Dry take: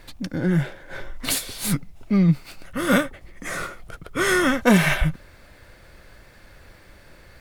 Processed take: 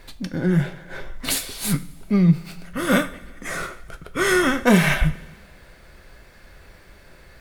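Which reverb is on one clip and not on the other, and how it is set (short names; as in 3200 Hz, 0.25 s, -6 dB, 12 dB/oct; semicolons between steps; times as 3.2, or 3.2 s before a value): two-slope reverb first 0.33 s, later 1.6 s, from -16 dB, DRR 8.5 dB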